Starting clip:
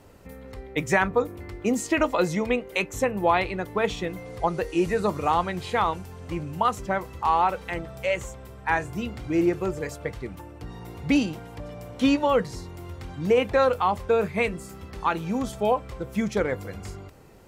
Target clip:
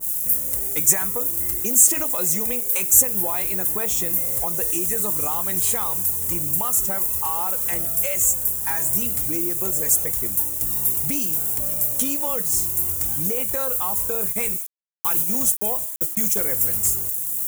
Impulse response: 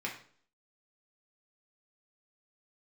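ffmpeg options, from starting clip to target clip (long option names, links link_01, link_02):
-filter_complex "[0:a]asettb=1/sr,asplit=3[link_01][link_02][link_03];[link_01]atrim=end=14.154[link_04];[link_02]atrim=start=14.15:end=16.44,asetpts=PTS-STARTPTS,afade=type=in:duration=0.004:curve=qsin,afade=type=out:start_time=2.286:duration=0.004:curve=qsin,agate=range=-58dB:threshold=-30dB:ratio=16:detection=peak[link_05];[link_03]atrim=start=16.436[link_06];[link_04][link_05]acrossfade=duration=0.004:curve1=hsin:curve2=qsin[link_07];[link_07][link_06]acrossfade=duration=0.004:curve1=qsin:curve2=hsin,lowshelf=frequency=430:gain=2.5,bandreject=frequency=325.1:width_type=h:width=4,bandreject=frequency=650.2:width_type=h:width=4,bandreject=frequency=975.3:width_type=h:width=4,bandreject=frequency=1300.4:width_type=h:width=4,bandreject=frequency=1625.5:width_type=h:width=4,bandreject=frequency=1950.6:width_type=h:width=4,bandreject=frequency=2275.7:width_type=h:width=4,bandreject=frequency=2600.8:width_type=h:width=4,bandreject=frequency=2925.9:width_type=h:width=4,bandreject=frequency=3251:width_type=h:width=4,bandreject=frequency=3576.1:width_type=h:width=4,bandreject=frequency=3901.2:width_type=h:width=4,bandreject=frequency=4226.3:width_type=h:width=4,bandreject=frequency=4551.4:width_type=h:width=4,bandreject=frequency=4876.5:width_type=h:width=4,bandreject=frequency=5201.6:width_type=h:width=4,bandreject=frequency=5526.7:width_type=h:width=4,bandreject=frequency=5851.8:width_type=h:width=4,bandreject=frequency=6176.9:width_type=h:width=4,bandreject=frequency=6502:width_type=h:width=4,bandreject=frequency=6827.1:width_type=h:width=4,bandreject=frequency=7152.2:width_type=h:width=4,bandreject=frequency=7477.3:width_type=h:width=4,bandreject=frequency=7802.4:width_type=h:width=4,bandreject=frequency=8127.5:width_type=h:width=4,bandreject=frequency=8452.6:width_type=h:width=4,bandreject=frequency=8777.7:width_type=h:width=4,bandreject=frequency=9102.8:width_type=h:width=4,bandreject=frequency=9427.9:width_type=h:width=4,bandreject=frequency=9753:width_type=h:width=4,bandreject=frequency=10078.1:width_type=h:width=4,bandreject=frequency=10403.2:width_type=h:width=4,bandreject=frequency=10728.3:width_type=h:width=4,bandreject=frequency=11053.4:width_type=h:width=4,bandreject=frequency=11378.5:width_type=h:width=4,bandreject=frequency=11703.6:width_type=h:width=4,bandreject=frequency=12028.7:width_type=h:width=4,bandreject=frequency=12353.8:width_type=h:width=4,acompressor=threshold=-26dB:ratio=5,acrusher=bits=8:mix=0:aa=0.000001,crystalizer=i=5:c=0,asoftclip=type=tanh:threshold=-18dB,aexciter=amount=10.4:drive=4.8:freq=6500,adynamicequalizer=threshold=0.0126:dfrequency=1700:dqfactor=0.7:tfrequency=1700:tqfactor=0.7:attack=5:release=100:ratio=0.375:range=2:mode=cutabove:tftype=highshelf,volume=-1.5dB"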